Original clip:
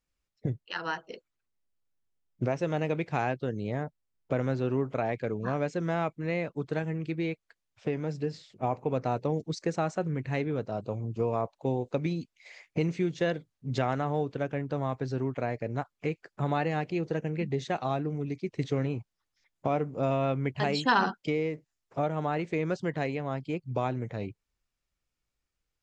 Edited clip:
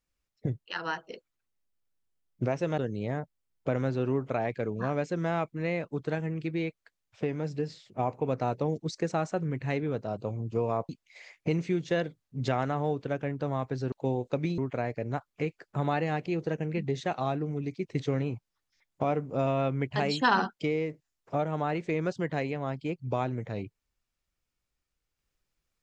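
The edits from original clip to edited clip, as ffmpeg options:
-filter_complex "[0:a]asplit=5[s0][s1][s2][s3][s4];[s0]atrim=end=2.782[s5];[s1]atrim=start=3.418:end=11.532[s6];[s2]atrim=start=12.188:end=15.222[s7];[s3]atrim=start=11.528:end=12.192[s8];[s4]atrim=start=15.218[s9];[s5][s6]acrossfade=d=0.004:c1=hsin:c2=hsin[s10];[s10][s7]acrossfade=d=0.004:c1=hsin:c2=hsin[s11];[s11][s8]acrossfade=d=0.004:c1=hsin:c2=hsin[s12];[s12][s9]acrossfade=d=0.004:c1=hsin:c2=hsin"

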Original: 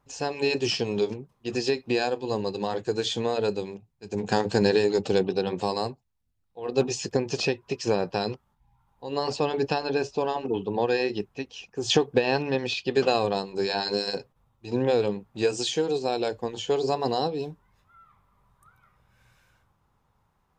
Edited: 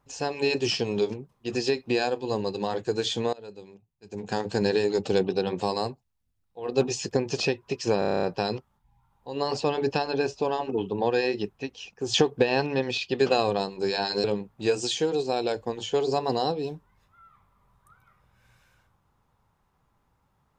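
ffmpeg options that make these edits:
-filter_complex "[0:a]asplit=11[s0][s1][s2][s3][s4][s5][s6][s7][s8][s9][s10];[s0]atrim=end=3.33,asetpts=PTS-STARTPTS,afade=t=out:st=3.326:d=0.004:c=hsin:silence=0.0841395[s11];[s1]atrim=start=3.33:end=8.022,asetpts=PTS-STARTPTS,afade=t=in:d=1.95:silence=0.0841395[s12];[s2]atrim=start=7.988:end=8.022[s13];[s3]atrim=start=7.988:end=8.022[s14];[s4]atrim=start=7.988:end=8.022[s15];[s5]atrim=start=7.988:end=8.022[s16];[s6]atrim=start=7.988:end=8.022[s17];[s7]atrim=start=7.988:end=8.022[s18];[s8]atrim=start=7.988:end=8.022[s19];[s9]atrim=start=7.988:end=14.002[s20];[s10]atrim=start=14.998[s21];[s11][s12]concat=n=2:v=0:a=1[s22];[s22][s13]acrossfade=d=0.004:c1=hsin:c2=hsin[s23];[s23][s14]acrossfade=d=0.004:c1=hsin:c2=hsin[s24];[s24][s15]acrossfade=d=0.004:c1=hsin:c2=hsin[s25];[s25][s16]acrossfade=d=0.004:c1=hsin:c2=hsin[s26];[s26][s17]acrossfade=d=0.004:c1=hsin:c2=hsin[s27];[s27][s18]acrossfade=d=0.004:c1=hsin:c2=hsin[s28];[s28][s19]acrossfade=d=0.004:c1=hsin:c2=hsin[s29];[s29][s20]acrossfade=d=0.004:c1=hsin:c2=hsin[s30];[s30][s21]acrossfade=d=0.004:c1=hsin:c2=hsin"

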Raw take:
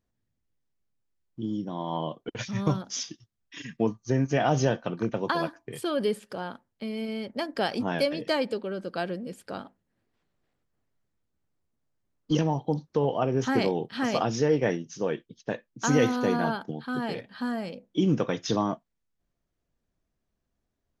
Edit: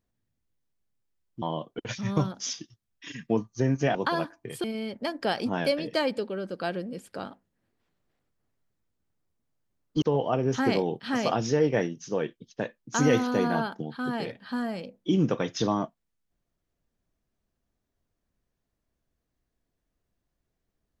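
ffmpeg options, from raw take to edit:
-filter_complex "[0:a]asplit=5[s0][s1][s2][s3][s4];[s0]atrim=end=1.422[s5];[s1]atrim=start=1.918:end=4.452[s6];[s2]atrim=start=5.178:end=5.872[s7];[s3]atrim=start=6.978:end=12.362[s8];[s4]atrim=start=12.908[s9];[s5][s6]acrossfade=d=0.004:c1=hsin:c2=hsin[s10];[s10][s7]acrossfade=d=0.004:c1=hsin:c2=hsin[s11];[s11][s8]acrossfade=d=0.004:c1=hsin:c2=hsin[s12];[s12][s9]acrossfade=d=0.004:c1=hsin:c2=hsin"

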